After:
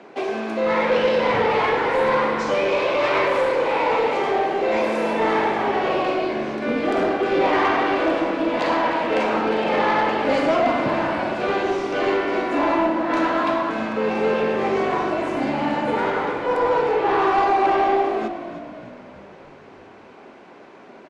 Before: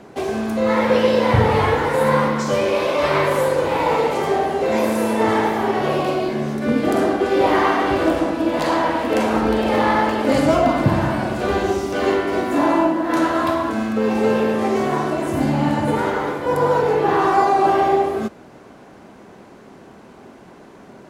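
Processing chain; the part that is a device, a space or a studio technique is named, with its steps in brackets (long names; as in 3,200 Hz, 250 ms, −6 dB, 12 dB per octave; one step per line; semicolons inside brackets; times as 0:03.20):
intercom (band-pass filter 310–4,400 Hz; parametric band 2,400 Hz +4.5 dB 0.38 octaves; soft clipping −12 dBFS, distortion −18 dB)
echo with shifted repeats 309 ms, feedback 53%, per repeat −49 Hz, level −12 dB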